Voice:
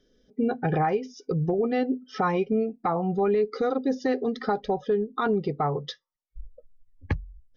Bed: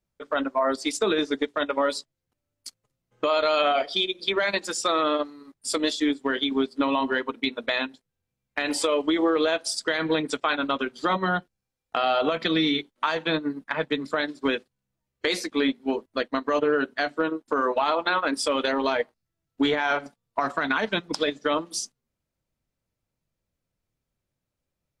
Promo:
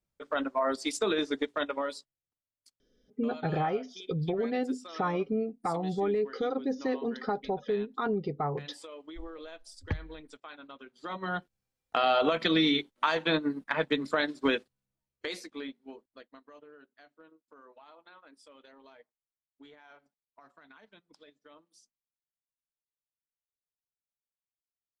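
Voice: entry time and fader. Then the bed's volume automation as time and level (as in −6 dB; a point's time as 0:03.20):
2.80 s, −5.5 dB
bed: 0:01.61 −5 dB
0:02.48 −22.5 dB
0:10.80 −22.5 dB
0:11.56 −2 dB
0:14.61 −2 dB
0:16.69 −31.5 dB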